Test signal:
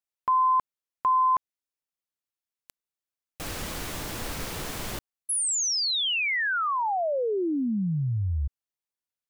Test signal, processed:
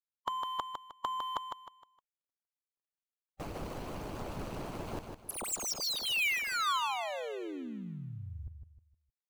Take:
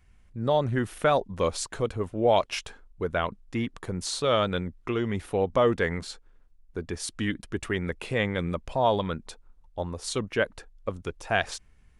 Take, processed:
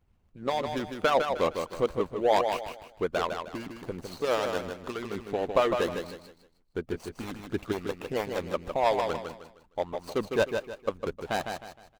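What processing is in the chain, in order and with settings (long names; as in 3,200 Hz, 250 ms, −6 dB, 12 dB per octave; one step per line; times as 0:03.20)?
running median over 25 samples
harmonic and percussive parts rebalanced harmonic −16 dB
low-shelf EQ 350 Hz −6 dB
repeating echo 155 ms, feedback 33%, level −6 dB
level +4.5 dB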